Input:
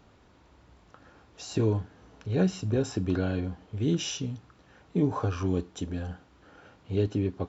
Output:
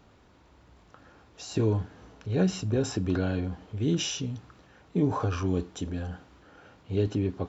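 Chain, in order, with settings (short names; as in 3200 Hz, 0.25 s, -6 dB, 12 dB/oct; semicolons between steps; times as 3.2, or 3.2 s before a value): transient shaper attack 0 dB, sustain +4 dB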